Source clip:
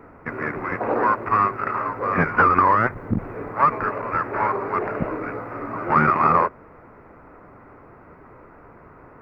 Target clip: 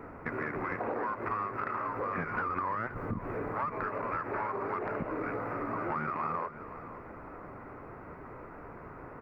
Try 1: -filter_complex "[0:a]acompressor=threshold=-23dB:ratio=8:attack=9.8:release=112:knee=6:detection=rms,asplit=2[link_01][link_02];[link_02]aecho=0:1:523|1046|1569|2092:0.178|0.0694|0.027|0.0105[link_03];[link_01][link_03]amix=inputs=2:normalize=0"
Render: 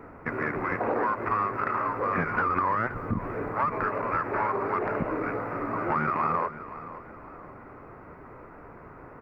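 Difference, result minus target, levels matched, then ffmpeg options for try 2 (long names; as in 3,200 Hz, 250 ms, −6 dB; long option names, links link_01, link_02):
downward compressor: peak gain reduction −7.5 dB
-filter_complex "[0:a]acompressor=threshold=-31.5dB:ratio=8:attack=9.8:release=112:knee=6:detection=rms,asplit=2[link_01][link_02];[link_02]aecho=0:1:523|1046|1569|2092:0.178|0.0694|0.027|0.0105[link_03];[link_01][link_03]amix=inputs=2:normalize=0"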